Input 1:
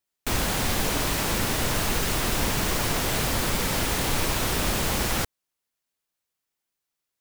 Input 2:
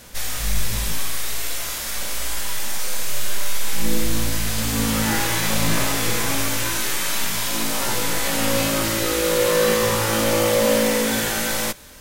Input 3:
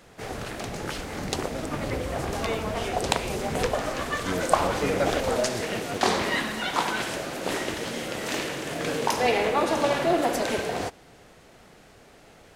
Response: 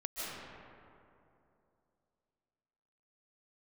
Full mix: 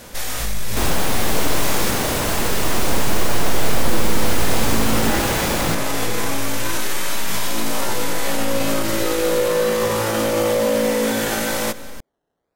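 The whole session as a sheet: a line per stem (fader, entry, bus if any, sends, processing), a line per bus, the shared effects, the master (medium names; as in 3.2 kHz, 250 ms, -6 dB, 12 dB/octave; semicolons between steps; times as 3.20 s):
+0.5 dB, 0.50 s, no send, none
+1.5 dB, 0.00 s, send -20 dB, peak limiter -17 dBFS, peak gain reduction 10 dB
-15.5 dB, 0.00 s, no send, decimation with a swept rate 15×, swing 60% 1 Hz; upward expansion 1.5:1, over -44 dBFS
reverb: on, RT60 2.8 s, pre-delay 110 ms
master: peaking EQ 490 Hz +6 dB 2.9 oct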